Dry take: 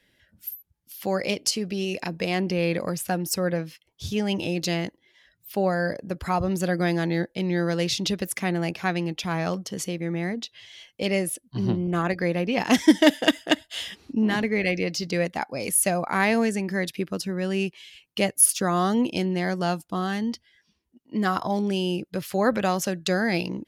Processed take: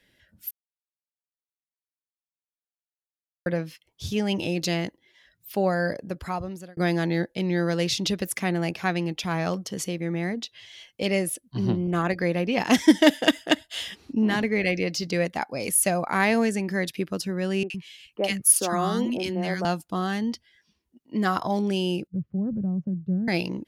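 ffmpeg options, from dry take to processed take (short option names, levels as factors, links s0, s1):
-filter_complex "[0:a]asettb=1/sr,asplit=3[s0][s1][s2];[s0]atrim=end=17.634[s3];[s1]atrim=start=17.63:end=19.65,asetpts=PTS-STARTPTS,afade=t=in:d=0.004:c=qsin,afade=t=out:st=2.016:d=0.004:c=qsin,acrossover=split=240|1200[s4][s5][s6];[s6]adelay=70[s7];[s4]adelay=110[s8];[s8][s5][s7]amix=inputs=3:normalize=0,atrim=end_sample=89082[s9];[s2]atrim=start=19.646[s10];[s3][s9]acrossfade=d=0.004:c1=hsin:c2=qsin[s11];[s11][s10]acrossfade=d=0.004:c1=qsin:c2=hsin,asettb=1/sr,asplit=3[s12][s13][s14];[s12]atrim=end=22.074[s15];[s13]atrim=start=22.07:end=23.28,asetpts=PTS-STARTPTS,afade=t=in:d=0.004:c=qsin,afade=t=out:st=1.206:d=0.004:c=qsin,lowpass=f=170:t=q:w=1.7[s16];[s14]atrim=start=23.276[s17];[s15][s16]acrossfade=d=0.004:c1=hsin:c2=qsin[s18];[s18][s17]acrossfade=d=0.004:c1=qsin:c2=hsin,asplit=4[s19][s20][s21][s22];[s19]atrim=end=0.51,asetpts=PTS-STARTPTS,afade=t=out:st=0.506:d=0.004:c=hsin[s23];[s20]atrim=start=0.51:end=3.46,asetpts=PTS-STARTPTS,volume=0[s24];[s21]atrim=start=3.46:end=6.77,asetpts=PTS-STARTPTS,afade=t=in:d=0.004:c=hsin,afade=t=out:st=2.5:d=0.81[s25];[s22]atrim=start=6.77,asetpts=PTS-STARTPTS,afade=t=in:d=0.004:c=hsin[s26];[s23][s24][s25][s26]concat=n=4:v=0:a=1"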